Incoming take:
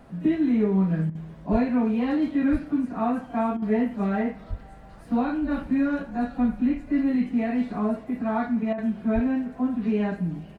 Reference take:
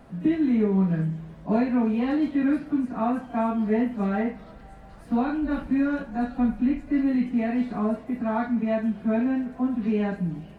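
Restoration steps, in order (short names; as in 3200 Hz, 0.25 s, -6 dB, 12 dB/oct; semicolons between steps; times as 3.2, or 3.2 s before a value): de-plosive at 1.51/2.51/4.49/9.14; interpolate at 1.1/3.57/8.73, 50 ms; inverse comb 87 ms -22 dB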